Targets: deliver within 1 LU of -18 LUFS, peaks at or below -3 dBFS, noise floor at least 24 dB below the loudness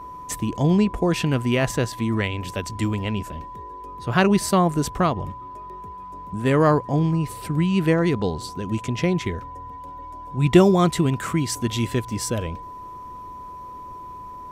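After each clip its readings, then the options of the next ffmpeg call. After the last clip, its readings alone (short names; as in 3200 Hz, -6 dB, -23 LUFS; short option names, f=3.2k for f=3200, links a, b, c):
steady tone 1000 Hz; tone level -35 dBFS; loudness -22.0 LUFS; peak -2.0 dBFS; loudness target -18.0 LUFS
-> -af "bandreject=f=1k:w=30"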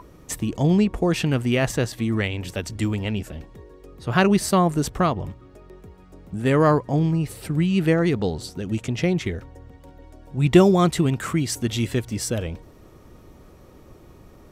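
steady tone none; loudness -22.0 LUFS; peak -2.0 dBFS; loudness target -18.0 LUFS
-> -af "volume=4dB,alimiter=limit=-3dB:level=0:latency=1"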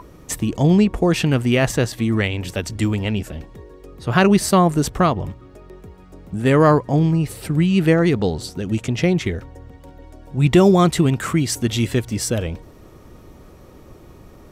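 loudness -18.5 LUFS; peak -3.0 dBFS; noise floor -45 dBFS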